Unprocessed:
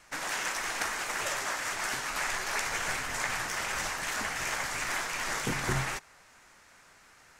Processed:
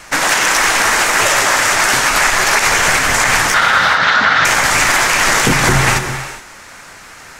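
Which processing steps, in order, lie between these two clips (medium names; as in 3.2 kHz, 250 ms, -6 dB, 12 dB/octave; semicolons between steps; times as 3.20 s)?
3.54–4.45 s: cabinet simulation 100–4400 Hz, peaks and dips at 350 Hz -9 dB, 1.4 kHz +10 dB, 2.5 kHz -5 dB, 3.7 kHz +7 dB; gated-style reverb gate 450 ms flat, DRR 9 dB; loudness maximiser +22 dB; trim -1 dB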